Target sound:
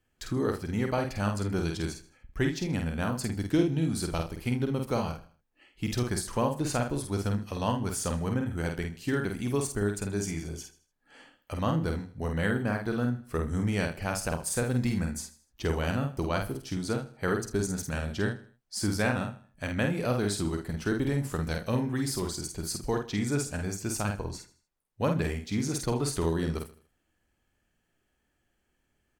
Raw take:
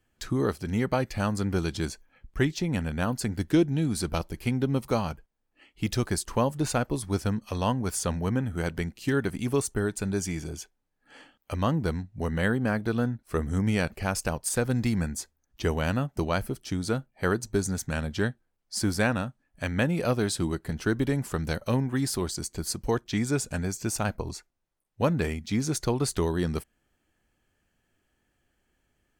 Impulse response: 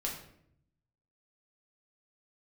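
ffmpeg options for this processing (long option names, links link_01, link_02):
-filter_complex "[0:a]asplit=2[link_01][link_02];[link_02]adelay=49,volume=-4.5dB[link_03];[link_01][link_03]amix=inputs=2:normalize=0,aecho=1:1:79|158|237:0.158|0.0586|0.0217,volume=-3.5dB"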